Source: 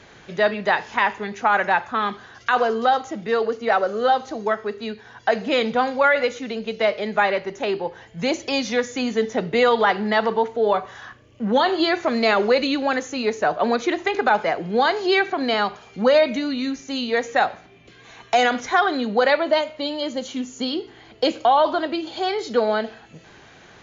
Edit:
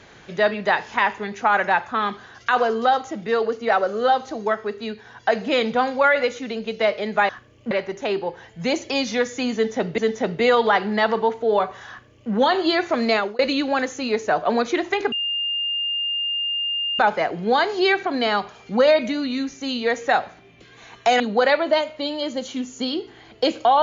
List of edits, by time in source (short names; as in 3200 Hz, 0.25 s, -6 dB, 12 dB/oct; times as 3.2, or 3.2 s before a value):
9.12–9.56 loop, 2 plays
11.03–11.45 copy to 7.29
12.24–12.53 fade out
14.26 add tone 2810 Hz -21.5 dBFS 1.87 s
18.47–19 cut